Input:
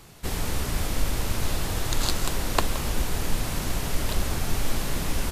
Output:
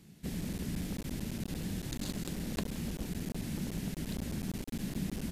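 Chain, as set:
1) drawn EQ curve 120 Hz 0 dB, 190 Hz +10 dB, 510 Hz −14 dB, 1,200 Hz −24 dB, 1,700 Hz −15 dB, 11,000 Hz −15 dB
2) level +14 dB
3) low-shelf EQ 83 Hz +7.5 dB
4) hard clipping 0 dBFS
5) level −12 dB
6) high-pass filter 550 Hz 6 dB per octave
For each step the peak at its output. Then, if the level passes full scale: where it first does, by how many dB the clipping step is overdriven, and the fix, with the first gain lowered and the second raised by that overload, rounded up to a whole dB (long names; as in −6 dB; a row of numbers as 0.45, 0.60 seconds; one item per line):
−12.0, +2.0, +8.5, 0.0, −12.0, −17.0 dBFS
step 2, 8.5 dB
step 2 +5 dB, step 5 −3 dB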